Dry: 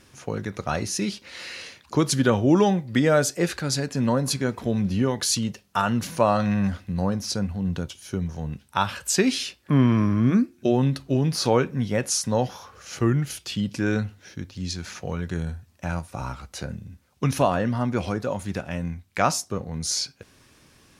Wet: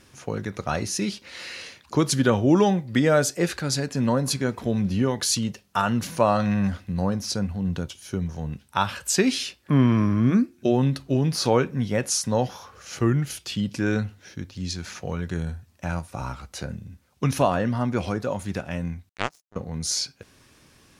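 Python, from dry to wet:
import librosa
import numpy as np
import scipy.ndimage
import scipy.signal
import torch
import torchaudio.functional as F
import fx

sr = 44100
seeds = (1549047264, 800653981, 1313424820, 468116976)

y = fx.power_curve(x, sr, exponent=3.0, at=(19.09, 19.56))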